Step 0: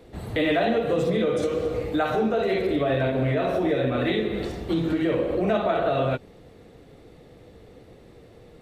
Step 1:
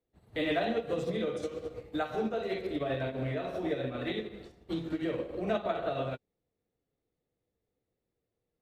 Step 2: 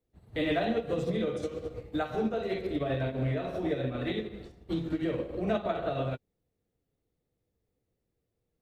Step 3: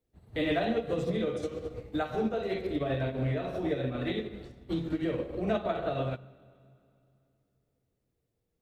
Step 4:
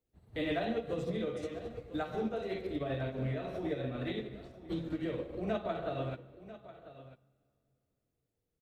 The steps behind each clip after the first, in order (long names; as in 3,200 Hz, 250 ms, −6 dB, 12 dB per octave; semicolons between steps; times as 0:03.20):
dynamic equaliser 5,300 Hz, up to +4 dB, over −45 dBFS, Q 0.9; expander for the loud parts 2.5 to 1, over −40 dBFS; level −6 dB
low-shelf EQ 200 Hz +8 dB
convolution reverb RT60 2.7 s, pre-delay 6 ms, DRR 19.5 dB
single-tap delay 994 ms −15.5 dB; level −5 dB